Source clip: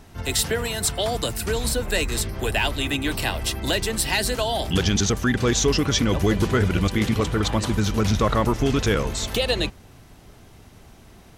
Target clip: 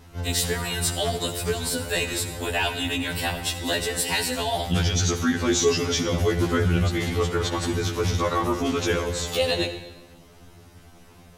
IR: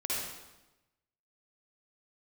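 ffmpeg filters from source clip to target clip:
-filter_complex "[0:a]acontrast=45,asplit=2[s0][s1];[1:a]atrim=start_sample=2205,asetrate=37926,aresample=44100[s2];[s1][s2]afir=irnorm=-1:irlink=0,volume=0.188[s3];[s0][s3]amix=inputs=2:normalize=0,afftfilt=real='re*2*eq(mod(b,4),0)':imag='im*2*eq(mod(b,4),0)':win_size=2048:overlap=0.75,volume=0.501"

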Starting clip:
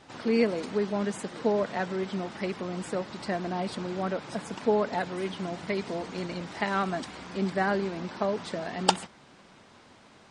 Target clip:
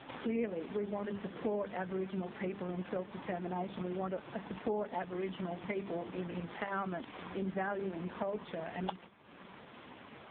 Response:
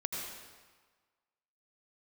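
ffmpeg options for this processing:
-filter_complex "[0:a]asettb=1/sr,asplit=3[s0][s1][s2];[s0]atrim=end=1.084[s3];[s1]atrim=start=1.08:end=2.57,asetpts=PTS-STARTPTS,afade=t=in:d=0.004:c=qsin,afade=t=out:st=1.486:d=0.004:c=qsin,lowshelf=f=95:g=7[s4];[s2]atrim=start=2.566[s5];[s3][s4]acrossfade=d=0.004:c1=hsin:c2=qsin[s6];[s6][s5]acrossfade=d=0.004:c1=qsin:c2=hsin,bandreject=f=50:t=h:w=6,bandreject=f=100:t=h:w=6,bandreject=f=150:t=h:w=6,bandreject=f=200:t=h:w=6,bandreject=f=250:t=h:w=6,bandreject=f=300:t=h:w=6,bandreject=f=350:t=h:w=6,bandreject=f=400:t=h:w=6,bandreject=f=450:t=h:w=6,acompressor=threshold=0.00398:ratio=2.5,volume=23.7,asoftclip=hard,volume=0.0422,volume=2.37" -ar 8000 -c:a libopencore_amrnb -b:a 4750

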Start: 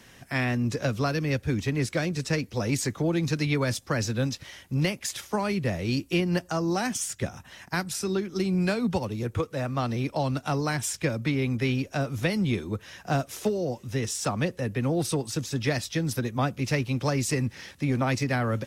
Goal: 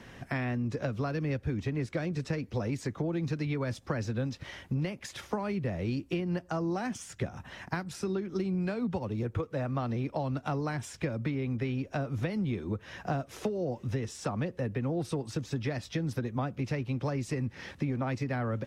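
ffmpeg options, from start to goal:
-af "acompressor=threshold=0.02:ratio=6,lowpass=f=1600:p=1,volume=1.78"

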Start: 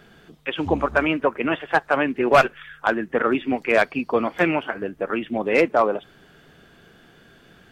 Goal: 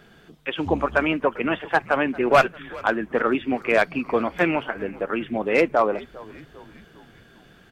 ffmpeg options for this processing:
-filter_complex "[0:a]asplit=5[s0][s1][s2][s3][s4];[s1]adelay=398,afreqshift=-95,volume=0.0891[s5];[s2]adelay=796,afreqshift=-190,volume=0.049[s6];[s3]adelay=1194,afreqshift=-285,volume=0.0269[s7];[s4]adelay=1592,afreqshift=-380,volume=0.0148[s8];[s0][s5][s6][s7][s8]amix=inputs=5:normalize=0,volume=0.891"

